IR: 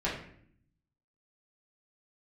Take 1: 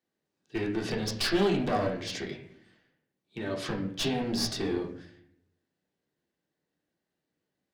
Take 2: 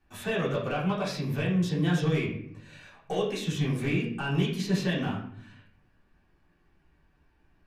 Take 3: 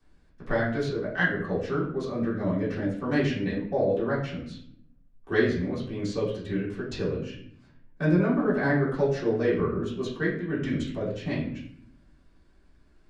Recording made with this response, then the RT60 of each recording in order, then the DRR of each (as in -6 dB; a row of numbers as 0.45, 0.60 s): 2; 0.60, 0.60, 0.60 s; -0.5, -9.0, -13.0 dB